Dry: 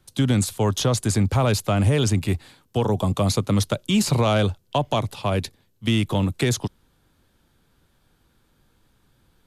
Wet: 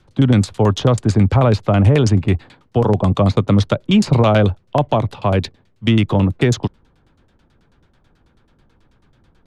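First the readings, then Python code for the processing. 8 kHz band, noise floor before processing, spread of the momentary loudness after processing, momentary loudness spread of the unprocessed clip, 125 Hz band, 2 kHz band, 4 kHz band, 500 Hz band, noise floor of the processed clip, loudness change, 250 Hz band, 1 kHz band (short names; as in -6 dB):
-5.5 dB, -65 dBFS, 8 LU, 8 LU, +7.0 dB, +4.0 dB, +1.0 dB, +6.5 dB, -58 dBFS, +6.5 dB, +7.0 dB, +5.5 dB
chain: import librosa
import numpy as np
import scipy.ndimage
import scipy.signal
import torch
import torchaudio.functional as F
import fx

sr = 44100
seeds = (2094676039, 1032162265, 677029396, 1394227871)

y = fx.quant_dither(x, sr, seeds[0], bits=12, dither='triangular')
y = fx.filter_lfo_lowpass(y, sr, shape='saw_down', hz=9.2, low_hz=520.0, high_hz=6400.0, q=0.73)
y = y * librosa.db_to_amplitude(7.0)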